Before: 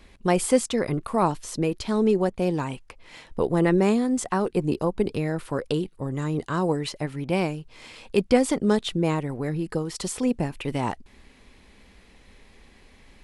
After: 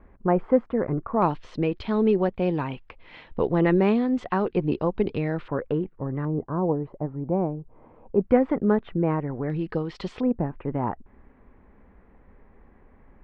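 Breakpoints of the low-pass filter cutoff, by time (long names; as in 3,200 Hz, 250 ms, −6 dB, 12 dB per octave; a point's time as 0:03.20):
low-pass filter 24 dB per octave
1,500 Hz
from 0:01.22 3,400 Hz
from 0:05.48 1,900 Hz
from 0:06.25 1,000 Hz
from 0:08.21 1,800 Hz
from 0:09.50 3,500 Hz
from 0:10.21 1,500 Hz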